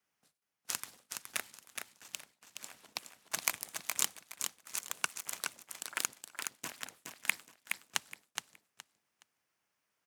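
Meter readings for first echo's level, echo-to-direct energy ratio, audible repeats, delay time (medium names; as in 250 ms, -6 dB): -5.5 dB, -5.5 dB, 3, 419 ms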